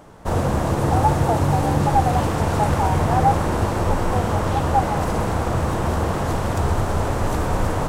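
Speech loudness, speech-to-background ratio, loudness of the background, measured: −25.0 LKFS, −3.5 dB, −21.5 LKFS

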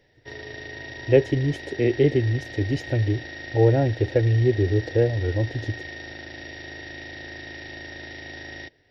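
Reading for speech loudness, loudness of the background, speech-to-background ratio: −23.0 LKFS, −37.0 LKFS, 14.0 dB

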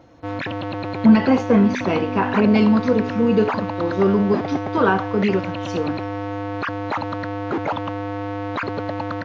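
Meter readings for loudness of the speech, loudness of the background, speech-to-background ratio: −19.0 LKFS, −27.0 LKFS, 8.0 dB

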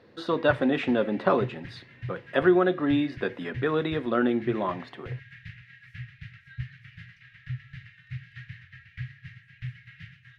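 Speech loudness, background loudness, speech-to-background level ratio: −26.0 LKFS, −42.5 LKFS, 16.5 dB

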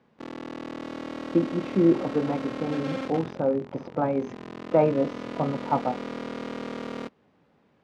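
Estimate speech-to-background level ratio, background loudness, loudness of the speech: 9.0 dB, −36.0 LKFS, −27.0 LKFS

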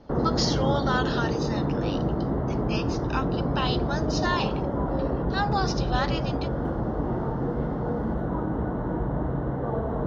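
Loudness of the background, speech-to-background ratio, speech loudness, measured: −27.5 LKFS, −3.5 dB, −31.0 LKFS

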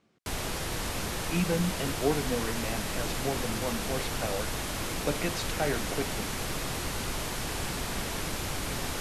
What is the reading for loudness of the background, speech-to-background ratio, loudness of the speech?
−33.0 LKFS, −1.0 dB, −34.0 LKFS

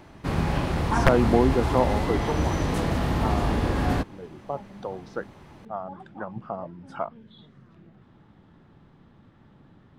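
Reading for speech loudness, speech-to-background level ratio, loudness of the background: −29.0 LKFS, −2.5 dB, −26.5 LKFS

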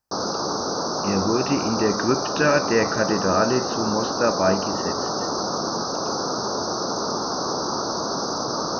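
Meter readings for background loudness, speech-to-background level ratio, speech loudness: −25.0 LKFS, 1.5 dB, −23.5 LKFS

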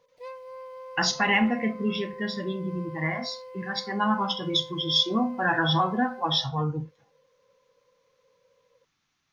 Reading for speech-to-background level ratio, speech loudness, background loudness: 16.5 dB, −26.0 LKFS, −42.5 LKFS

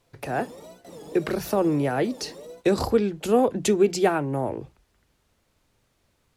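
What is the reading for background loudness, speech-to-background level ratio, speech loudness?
−44.0 LKFS, 19.5 dB, −24.5 LKFS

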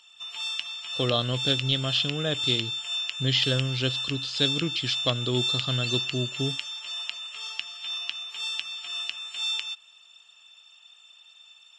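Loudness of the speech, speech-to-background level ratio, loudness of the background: −27.5 LKFS, 2.0 dB, −29.5 LKFS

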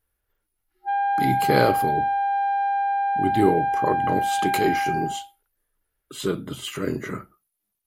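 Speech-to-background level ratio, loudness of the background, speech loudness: −2.5 dB, −23.5 LKFS, −26.0 LKFS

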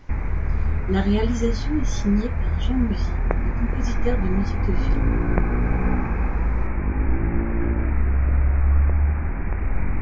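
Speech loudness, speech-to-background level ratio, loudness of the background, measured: −26.5 LKFS, −2.0 dB, −24.5 LKFS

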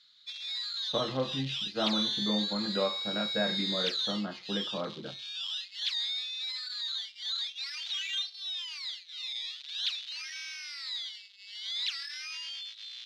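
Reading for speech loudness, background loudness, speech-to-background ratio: −35.0 LKFS, −33.5 LKFS, −1.5 dB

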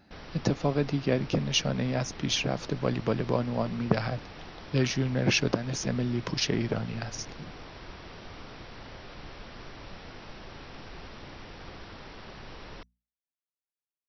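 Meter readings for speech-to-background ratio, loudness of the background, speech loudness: 16.5 dB, −45.5 LKFS, −29.0 LKFS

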